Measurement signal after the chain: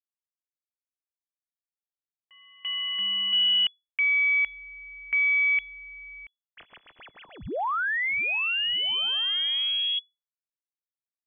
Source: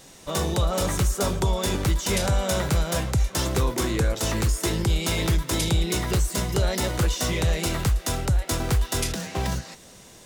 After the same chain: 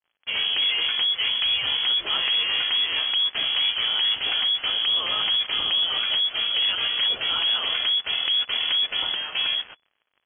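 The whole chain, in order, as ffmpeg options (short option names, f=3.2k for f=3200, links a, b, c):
-af "aeval=exprs='0.2*(cos(1*acos(clip(val(0)/0.2,-1,1)))-cos(1*PI/2))+0.01*(cos(2*acos(clip(val(0)/0.2,-1,1)))-cos(2*PI/2))+0.00398*(cos(3*acos(clip(val(0)/0.2,-1,1)))-cos(3*PI/2))+0.0398*(cos(5*acos(clip(val(0)/0.2,-1,1)))-cos(5*PI/2))':c=same,acrusher=bits=4:mix=0:aa=0.5,lowpass=f=2.9k:t=q:w=0.5098,lowpass=f=2.9k:t=q:w=0.6013,lowpass=f=2.9k:t=q:w=0.9,lowpass=f=2.9k:t=q:w=2.563,afreqshift=-3400,volume=-2dB"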